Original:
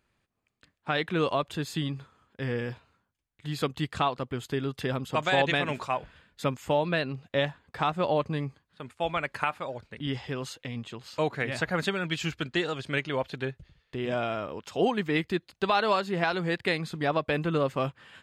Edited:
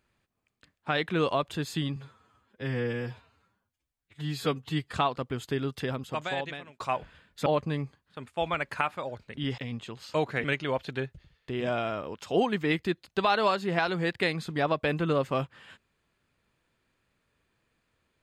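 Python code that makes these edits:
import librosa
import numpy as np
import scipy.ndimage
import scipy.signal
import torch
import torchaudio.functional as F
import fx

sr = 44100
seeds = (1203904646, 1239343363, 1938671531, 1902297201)

y = fx.edit(x, sr, fx.stretch_span(start_s=1.96, length_s=1.98, factor=1.5),
    fx.fade_out_span(start_s=4.67, length_s=1.14),
    fx.cut(start_s=6.47, length_s=1.62),
    fx.cut(start_s=10.21, length_s=0.41),
    fx.cut(start_s=11.48, length_s=1.41), tone=tone)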